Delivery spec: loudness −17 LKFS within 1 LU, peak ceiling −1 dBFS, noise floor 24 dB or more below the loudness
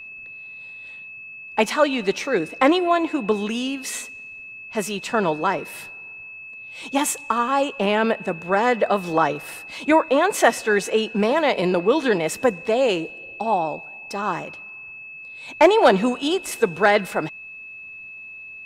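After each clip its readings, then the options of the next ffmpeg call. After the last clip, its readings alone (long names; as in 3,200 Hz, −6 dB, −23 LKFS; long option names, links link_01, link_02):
interfering tone 2,600 Hz; level of the tone −36 dBFS; integrated loudness −21.0 LKFS; sample peak −2.5 dBFS; target loudness −17.0 LKFS
→ -af "bandreject=frequency=2600:width=30"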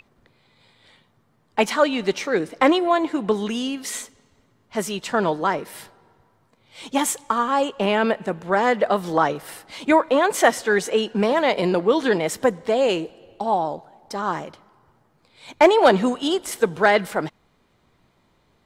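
interfering tone none found; integrated loudness −21.0 LKFS; sample peak −2.5 dBFS; target loudness −17.0 LKFS
→ -af "volume=4dB,alimiter=limit=-1dB:level=0:latency=1"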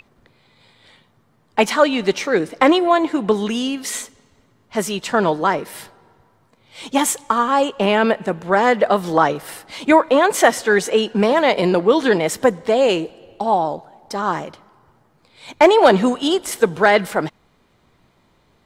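integrated loudness −17.5 LKFS; sample peak −1.0 dBFS; background noise floor −59 dBFS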